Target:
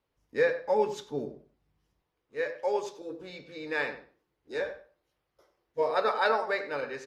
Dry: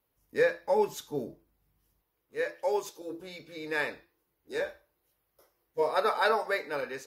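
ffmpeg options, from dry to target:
ffmpeg -i in.wav -filter_complex "[0:a]lowpass=5700,asplit=2[link_01][link_02];[link_02]adelay=94,lowpass=frequency=1700:poles=1,volume=-10dB,asplit=2[link_03][link_04];[link_04]adelay=94,lowpass=frequency=1700:poles=1,volume=0.22,asplit=2[link_05][link_06];[link_06]adelay=94,lowpass=frequency=1700:poles=1,volume=0.22[link_07];[link_01][link_03][link_05][link_07]amix=inputs=4:normalize=0" out.wav

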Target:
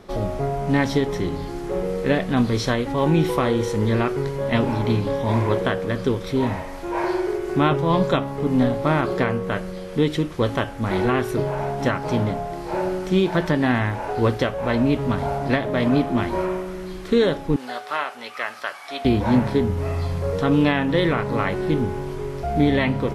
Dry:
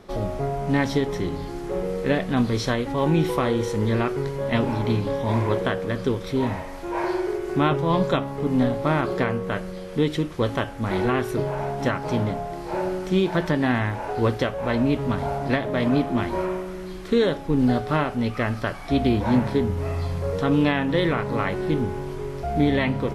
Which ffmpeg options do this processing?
ffmpeg -i in.wav -filter_complex "[0:a]asettb=1/sr,asplit=3[link_01][link_02][link_03];[link_01]atrim=end=17.564[link_04];[link_02]atrim=start=17.56:end=19.05,asetpts=PTS-STARTPTS,afade=type=in:duration=0.004:curve=qsin,afade=type=out:start_time=1.486:duration=0.004:curve=qsin,highpass=860[link_05];[link_03]atrim=start=19.046[link_06];[link_04][link_05]acrossfade=duration=0.004:curve1=hsin:curve2=qsin[link_07];[link_07][link_06]acrossfade=duration=0.004:curve1=qsin:curve2=hsin,volume=2dB" out.wav

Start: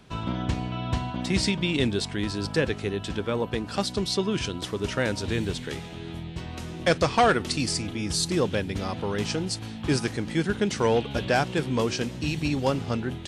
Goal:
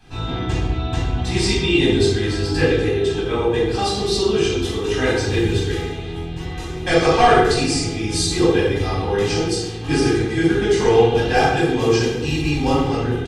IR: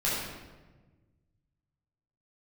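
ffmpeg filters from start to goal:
-filter_complex "[0:a]aecho=1:1:2.5:0.71[link_01];[1:a]atrim=start_sample=2205,asetrate=61740,aresample=44100[link_02];[link_01][link_02]afir=irnorm=-1:irlink=0,volume=-1.5dB"

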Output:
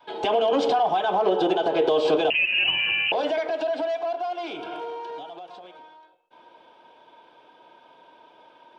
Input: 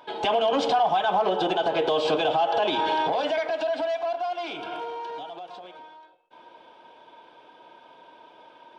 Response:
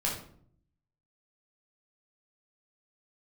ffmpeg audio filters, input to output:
-filter_complex "[0:a]adynamicequalizer=threshold=0.01:dfrequency=390:dqfactor=1.4:tfrequency=390:tqfactor=1.4:attack=5:release=100:ratio=0.375:range=4:mode=boostabove:tftype=bell,asettb=1/sr,asplit=3[link_01][link_02][link_03];[link_01]atrim=end=2.304[link_04];[link_02]atrim=start=2.3:end=3.12,asetpts=PTS-STARTPTS,afade=type=in:duration=0.004:curve=qsin,afade=type=out:start_time=0.816:duration=0.004:curve=qsin,lowpass=frequency=2800:width_type=q:width=0.5098,lowpass=frequency=2800:width_type=q:width=0.6013,lowpass=frequency=2800:width_type=q:width=0.9,lowpass=frequency=2800:width_type=q:width=2.563,afreqshift=-3300[link_05];[link_03]atrim=start=3.116[link_06];[link_04][link_05]acrossfade=duration=0.004:curve1=hsin:curve2=qsin[link_07];[link_07][link_06]acrossfade=duration=0.004:curve1=qsin:curve2=hsin,volume=-2dB"

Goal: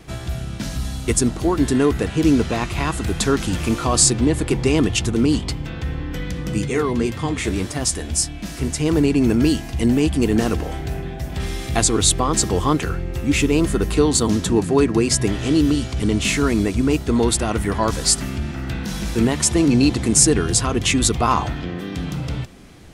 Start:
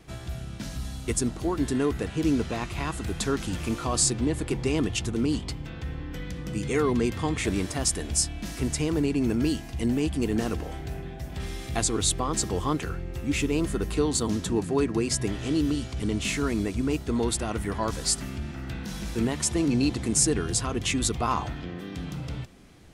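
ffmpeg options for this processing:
ffmpeg -i in.wav -filter_complex "[0:a]asettb=1/sr,asplit=3[link_01][link_02][link_03];[link_01]atrim=end=6.654[link_04];[link_02]atrim=start=6.65:end=8.86,asetpts=PTS-STARTPTS,afade=type=in:duration=0.004:curve=qsin,afade=type=out:start_time=2.206:duration=0.004:curve=qsin,flanger=delay=6.6:depth=7.7:regen=54:speed=1.8:shape=sinusoidal[link_05];[link_03]atrim=start=8.856[link_06];[link_04][link_05]acrossfade=duration=0.004:curve1=hsin:curve2=qsin[link_07];[link_07][link_06]acrossfade=duration=0.004:curve1=qsin:curve2=hsin,volume=8.5dB" out.wav

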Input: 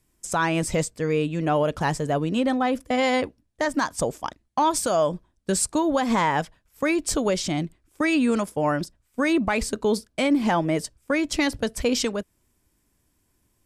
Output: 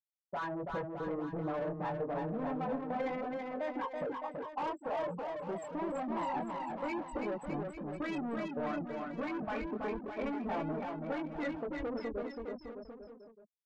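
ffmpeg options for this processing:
ffmpeg -i in.wav -filter_complex "[0:a]afftfilt=real='re*gte(hypot(re,im),0.251)':imag='im*gte(hypot(re,im),0.251)':win_size=1024:overlap=0.75,flanger=delay=19.5:depth=4.3:speed=0.27,aresample=16000,asoftclip=type=tanh:threshold=-30dB,aresample=44100,asplit=2[link_01][link_02];[link_02]highpass=frequency=720:poles=1,volume=9dB,asoftclip=type=tanh:threshold=-25.5dB[link_03];[link_01][link_03]amix=inputs=2:normalize=0,lowpass=frequency=1400:poles=1,volume=-6dB,acompressor=threshold=-38dB:ratio=2,asplit=2[link_04][link_05];[link_05]aecho=0:1:330|610.5|848.9|1052|1224:0.631|0.398|0.251|0.158|0.1[link_06];[link_04][link_06]amix=inputs=2:normalize=0" out.wav

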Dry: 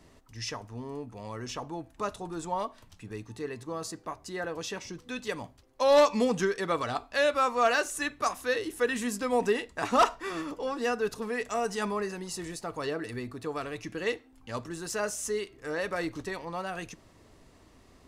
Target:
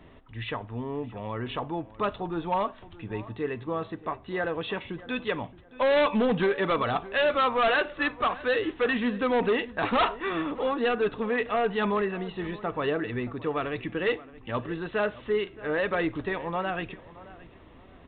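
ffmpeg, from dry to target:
ffmpeg -i in.wav -filter_complex "[0:a]aresample=8000,asoftclip=type=hard:threshold=-25.5dB,aresample=44100,asplit=2[link_01][link_02];[link_02]adelay=622,lowpass=frequency=2400:poles=1,volume=-18dB,asplit=2[link_03][link_04];[link_04]adelay=622,lowpass=frequency=2400:poles=1,volume=0.27[link_05];[link_01][link_03][link_05]amix=inputs=3:normalize=0,volume=5.5dB" out.wav

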